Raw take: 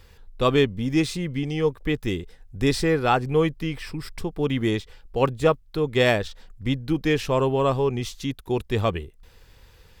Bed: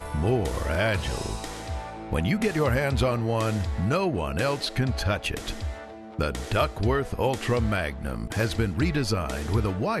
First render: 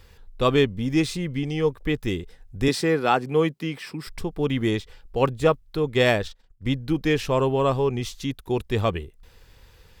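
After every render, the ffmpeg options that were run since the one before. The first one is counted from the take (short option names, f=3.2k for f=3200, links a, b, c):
-filter_complex "[0:a]asettb=1/sr,asplit=3[a][b][c];[a]atrim=end=2.684[d];[b]atrim=start=2.68:end=4.07,asetpts=PTS-STARTPTS,afade=t=in:d=0.004:c=qsin,afade=t=out:st=1.386:d=0.004:c=qsin,highpass=f=150:w=0.5412,highpass=f=150:w=1.3066[e];[c]atrim=start=4.066[f];[d][e]acrossfade=d=0.004:c1=hsin:c2=qsin[g];[g][f]acrossfade=d=0.004:c1=qsin:c2=hsin,asettb=1/sr,asplit=3[h][i][j];[h]atrim=end=5.834[k];[i]atrim=start=5.83:end=6.7,asetpts=PTS-STARTPTS,afade=t=in:d=0.004:c=qsin,afade=t=out:st=0.866:d=0.004:c=qsin,agate=range=-33dB:threshold=-35dB:ratio=3:release=100:detection=peak[l];[j]atrim=start=6.696[m];[k][l]acrossfade=d=0.004:c1=hsin:c2=qsin[n];[n][m]acrossfade=d=0.004:c1=qsin:c2=hsin"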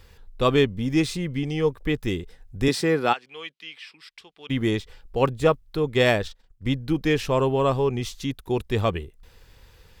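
-filter_complex "[0:a]asplit=3[a][b][c];[a]afade=t=out:st=3.12:d=0.02[d];[b]bandpass=f=3.1k:t=q:w=1.7,afade=t=in:st=3.12:d=0.02,afade=t=out:st=4.49:d=0.02[e];[c]afade=t=in:st=4.49:d=0.02[f];[d][e][f]amix=inputs=3:normalize=0"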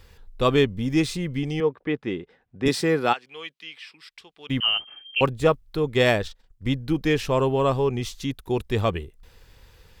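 -filter_complex "[0:a]asettb=1/sr,asplit=3[a][b][c];[a]atrim=end=1.604[d];[b]atrim=start=1.6:end=2.66,asetpts=PTS-STARTPTS,afade=t=in:d=0.004:c=qsin,afade=t=out:st=1.056:d=0.004:c=qsin,highpass=190,lowpass=2.5k[e];[c]atrim=start=2.656[f];[d][e]acrossfade=d=0.004:c1=hsin:c2=qsin[g];[g][f]acrossfade=d=0.004:c1=qsin:c2=hsin,asettb=1/sr,asplit=3[h][i][j];[h]atrim=end=4.604[k];[i]atrim=start=4.6:end=5.21,asetpts=PTS-STARTPTS,afade=t=in:d=0.004:c=qsin,afade=t=out:st=0.606:d=0.004:c=qsin,lowpass=f=2.7k:t=q:w=0.5098,lowpass=f=2.7k:t=q:w=0.6013,lowpass=f=2.7k:t=q:w=0.9,lowpass=f=2.7k:t=q:w=2.563,afreqshift=-3200[l];[j]atrim=start=5.206[m];[k][l]acrossfade=d=0.004:c1=hsin:c2=qsin[n];[n][m]acrossfade=d=0.004:c1=qsin:c2=hsin"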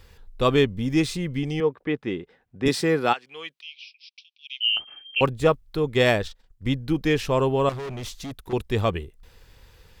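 -filter_complex "[0:a]asettb=1/sr,asplit=3[a][b][c];[a]atrim=end=3.614[d];[b]atrim=start=3.61:end=4.77,asetpts=PTS-STARTPTS,afade=t=in:d=0.004:c=qsin,afade=t=out:st=1.156:d=0.004:c=qsin,asuperpass=centerf=3800:order=20:qfactor=1[e];[c]atrim=start=4.766[f];[d][e]acrossfade=d=0.004:c1=hsin:c2=qsin[g];[g][f]acrossfade=d=0.004:c1=qsin:c2=hsin,asettb=1/sr,asplit=3[h][i][j];[h]atrim=end=7.694[k];[i]atrim=start=7.69:end=8.53,asetpts=PTS-STARTPTS,afade=t=in:d=0.004:c=qsin,afade=t=out:st=0.836:d=0.004:c=qsin,volume=31dB,asoftclip=hard,volume=-31dB[l];[j]atrim=start=8.526[m];[k][l]acrossfade=d=0.004:c1=hsin:c2=qsin[n];[n][m]acrossfade=d=0.004:c1=qsin:c2=hsin"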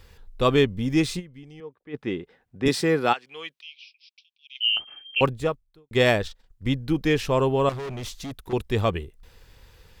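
-filter_complex "[0:a]asplit=5[a][b][c][d][e];[a]atrim=end=1.33,asetpts=PTS-STARTPTS,afade=t=out:st=1.19:d=0.14:c=exp:silence=0.133352[f];[b]atrim=start=1.33:end=1.81,asetpts=PTS-STARTPTS,volume=-17.5dB[g];[c]atrim=start=1.81:end=4.55,asetpts=PTS-STARTPTS,afade=t=in:d=0.14:c=exp:silence=0.133352,afade=t=out:st=1.64:d=1.1:c=qua:silence=0.375837[h];[d]atrim=start=4.55:end=5.91,asetpts=PTS-STARTPTS,afade=t=in:d=0.004:c=hsin:silence=0.375837,afade=t=out:st=0.74:d=0.62:c=qua[i];[e]atrim=start=5.91,asetpts=PTS-STARTPTS,afade=t=in:d=0.004:c=hsin[j];[f][g][h][i][j]concat=n=5:v=0:a=1"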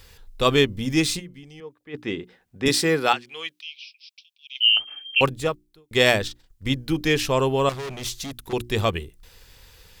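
-af "highshelf=f=2.5k:g=9.5,bandreject=f=60:t=h:w=6,bandreject=f=120:t=h:w=6,bandreject=f=180:t=h:w=6,bandreject=f=240:t=h:w=6,bandreject=f=300:t=h:w=6,bandreject=f=360:t=h:w=6"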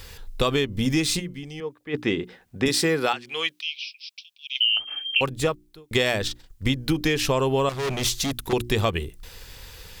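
-filter_complex "[0:a]asplit=2[a][b];[b]alimiter=limit=-12.5dB:level=0:latency=1:release=192,volume=2.5dB[c];[a][c]amix=inputs=2:normalize=0,acompressor=threshold=-19dB:ratio=6"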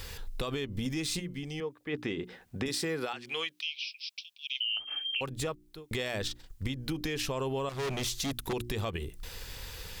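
-af "alimiter=limit=-15.5dB:level=0:latency=1:release=71,acompressor=threshold=-34dB:ratio=2.5"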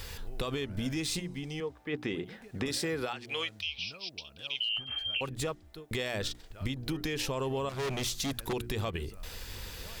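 -filter_complex "[1:a]volume=-27.5dB[a];[0:a][a]amix=inputs=2:normalize=0"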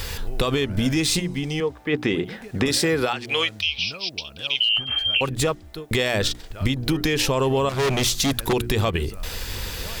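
-af "volume=12dB"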